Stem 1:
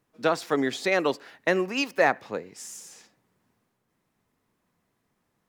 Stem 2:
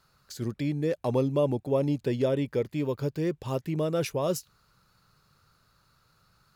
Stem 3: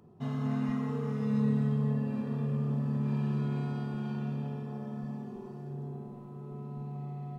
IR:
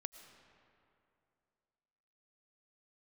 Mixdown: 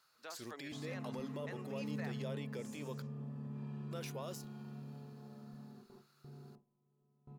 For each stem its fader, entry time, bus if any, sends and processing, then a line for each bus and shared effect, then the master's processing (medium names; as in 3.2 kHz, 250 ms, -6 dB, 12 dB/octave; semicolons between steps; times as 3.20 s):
-17.5 dB, 0.00 s, bus A, no send, none
-3.5 dB, 0.00 s, muted 3.02–3.91 s, bus A, no send, de-esser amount 85%
-14.0 dB, 0.50 s, no bus, no send, gate with hold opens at -32 dBFS
bus A: 0.0 dB, high-pass 1.2 kHz 6 dB/octave; peak limiter -36.5 dBFS, peak gain reduction 10.5 dB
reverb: none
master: none